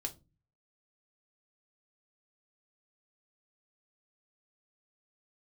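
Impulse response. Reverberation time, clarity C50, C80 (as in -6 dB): 0.25 s, 18.0 dB, 26.0 dB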